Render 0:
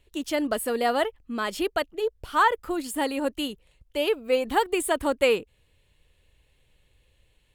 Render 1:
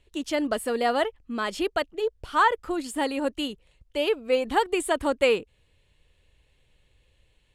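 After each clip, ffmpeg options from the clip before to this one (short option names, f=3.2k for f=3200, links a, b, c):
-af "lowpass=9.1k"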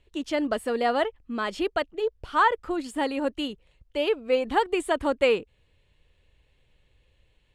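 -af "highshelf=f=7.2k:g=-11.5"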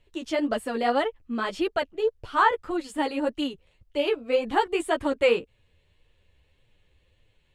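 -af "flanger=delay=8.2:depth=5.7:regen=-2:speed=1.8:shape=triangular,volume=3dB"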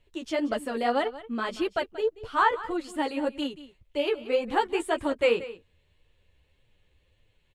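-af "aecho=1:1:182:0.158,volume=-2dB"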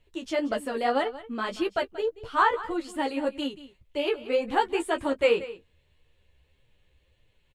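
-filter_complex "[0:a]asplit=2[a][b];[b]adelay=15,volume=-9.5dB[c];[a][c]amix=inputs=2:normalize=0"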